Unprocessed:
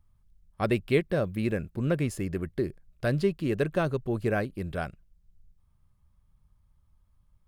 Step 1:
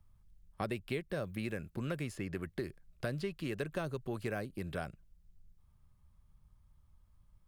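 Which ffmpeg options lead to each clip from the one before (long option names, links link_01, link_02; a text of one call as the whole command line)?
ffmpeg -i in.wav -filter_complex "[0:a]acrossover=split=96|880|4700[link_01][link_02][link_03][link_04];[link_01]acompressor=threshold=-54dB:ratio=4[link_05];[link_02]acompressor=threshold=-38dB:ratio=4[link_06];[link_03]acompressor=threshold=-44dB:ratio=4[link_07];[link_04]acompressor=threshold=-56dB:ratio=4[link_08];[link_05][link_06][link_07][link_08]amix=inputs=4:normalize=0" out.wav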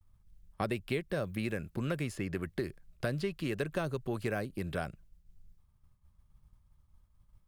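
ffmpeg -i in.wav -af "agate=range=-33dB:threshold=-58dB:ratio=3:detection=peak,volume=3.5dB" out.wav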